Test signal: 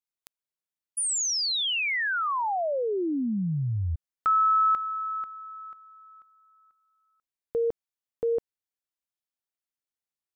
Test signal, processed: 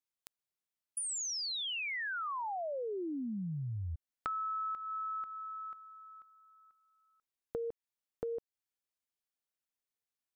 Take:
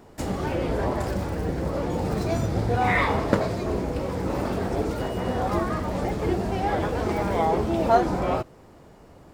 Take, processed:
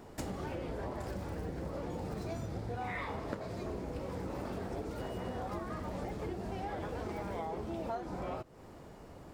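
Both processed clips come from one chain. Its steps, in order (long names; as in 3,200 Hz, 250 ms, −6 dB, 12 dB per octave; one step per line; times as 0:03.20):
downward compressor 6 to 1, threshold −35 dBFS
level −2 dB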